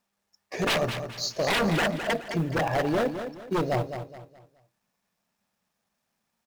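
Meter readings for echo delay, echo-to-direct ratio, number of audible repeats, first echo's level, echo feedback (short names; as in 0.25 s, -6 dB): 0.211 s, -8.5 dB, 3, -9.0 dB, 34%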